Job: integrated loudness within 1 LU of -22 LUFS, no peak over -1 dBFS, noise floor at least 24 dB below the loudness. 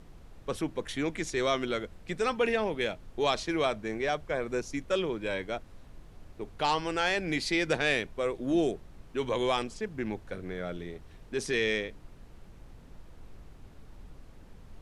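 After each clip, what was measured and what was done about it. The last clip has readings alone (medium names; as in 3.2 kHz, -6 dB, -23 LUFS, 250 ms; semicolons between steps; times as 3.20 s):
noise floor -52 dBFS; noise floor target -55 dBFS; loudness -31.0 LUFS; peak level -13.0 dBFS; loudness target -22.0 LUFS
-> noise print and reduce 6 dB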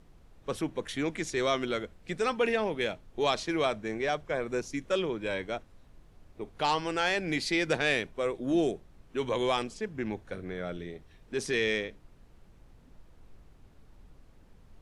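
noise floor -58 dBFS; loudness -31.0 LUFS; peak level -13.0 dBFS; loudness target -22.0 LUFS
-> trim +9 dB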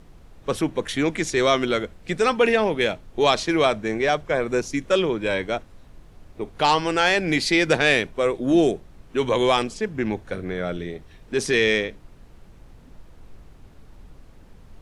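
loudness -22.0 LUFS; peak level -4.0 dBFS; noise floor -49 dBFS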